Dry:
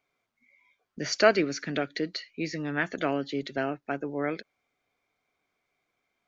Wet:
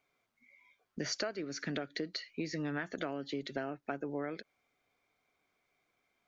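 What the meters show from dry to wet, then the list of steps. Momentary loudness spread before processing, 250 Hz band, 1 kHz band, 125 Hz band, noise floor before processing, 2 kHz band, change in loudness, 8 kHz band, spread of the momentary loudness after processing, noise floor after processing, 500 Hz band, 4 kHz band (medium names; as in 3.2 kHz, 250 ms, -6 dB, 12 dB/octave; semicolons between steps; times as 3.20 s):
12 LU, -7.5 dB, -11.5 dB, -6.5 dB, -81 dBFS, -11.0 dB, -10.0 dB, no reading, 4 LU, -81 dBFS, -11.5 dB, -6.5 dB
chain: dynamic bell 2.5 kHz, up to -5 dB, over -44 dBFS, Q 2.2; compression 16:1, threshold -33 dBFS, peak gain reduction 20.5 dB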